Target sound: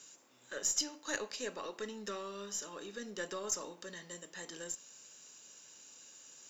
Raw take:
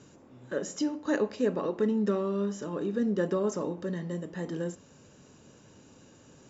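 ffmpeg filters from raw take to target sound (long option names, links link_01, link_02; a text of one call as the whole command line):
ffmpeg -i in.wav -af "aderivative,aeval=exprs='0.0398*(cos(1*acos(clip(val(0)/0.0398,-1,1)))-cos(1*PI/2))+0.000891*(cos(8*acos(clip(val(0)/0.0398,-1,1)))-cos(8*PI/2))':channel_layout=same,volume=10dB" out.wav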